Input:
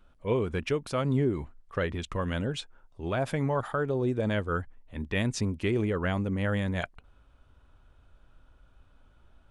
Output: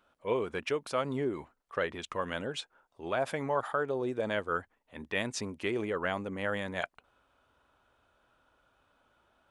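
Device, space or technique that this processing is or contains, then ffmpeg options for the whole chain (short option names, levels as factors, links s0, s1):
filter by subtraction: -filter_complex "[0:a]asplit=2[s0][s1];[s1]lowpass=720,volume=-1[s2];[s0][s2]amix=inputs=2:normalize=0,volume=0.841"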